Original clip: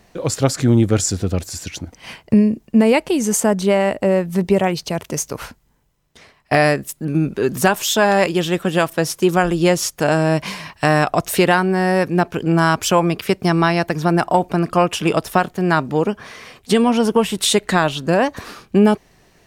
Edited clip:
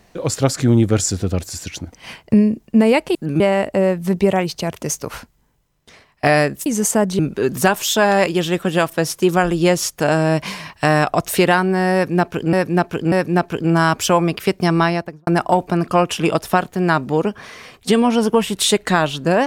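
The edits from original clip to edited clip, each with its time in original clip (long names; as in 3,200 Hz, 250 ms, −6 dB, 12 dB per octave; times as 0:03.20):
0:03.15–0:03.68: swap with 0:06.94–0:07.19
0:11.94–0:12.53: repeat, 3 plays
0:13.64–0:14.09: fade out and dull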